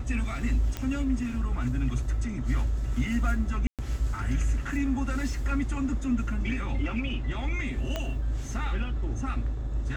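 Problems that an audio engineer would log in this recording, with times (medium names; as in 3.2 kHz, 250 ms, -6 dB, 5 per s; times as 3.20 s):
0.77 s: pop -17 dBFS
3.67–3.79 s: dropout 117 ms
7.96 s: pop -16 dBFS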